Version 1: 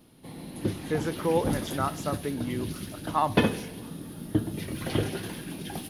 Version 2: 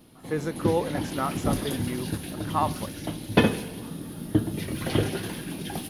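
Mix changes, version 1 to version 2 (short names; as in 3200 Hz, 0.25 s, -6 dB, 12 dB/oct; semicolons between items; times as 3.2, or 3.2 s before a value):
speech: entry -0.60 s; background +3.0 dB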